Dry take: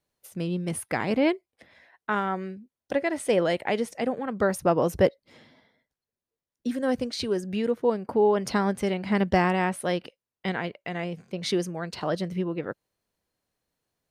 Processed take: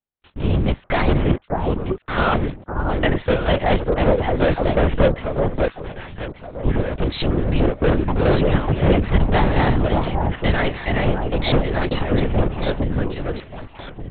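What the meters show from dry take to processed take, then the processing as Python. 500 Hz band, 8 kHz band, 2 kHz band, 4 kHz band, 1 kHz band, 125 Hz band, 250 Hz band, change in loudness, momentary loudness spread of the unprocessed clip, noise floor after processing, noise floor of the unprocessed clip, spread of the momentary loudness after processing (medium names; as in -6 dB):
+5.5 dB, under -35 dB, +6.5 dB, +7.0 dB, +6.5 dB, +14.5 dB, +6.5 dB, +6.5 dB, 11 LU, -50 dBFS, under -85 dBFS, 9 LU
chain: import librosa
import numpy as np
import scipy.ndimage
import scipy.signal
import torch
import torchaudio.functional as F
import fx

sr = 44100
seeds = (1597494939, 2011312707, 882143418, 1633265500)

y = fx.leveller(x, sr, passes=5)
y = fx.chopper(y, sr, hz=2.3, depth_pct=60, duty_pct=70)
y = fx.echo_alternate(y, sr, ms=593, hz=1200.0, feedback_pct=54, wet_db=-2)
y = fx.lpc_vocoder(y, sr, seeds[0], excitation='whisper', order=8)
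y = fx.record_warp(y, sr, rpm=33.33, depth_cents=100.0)
y = y * librosa.db_to_amplitude(-4.0)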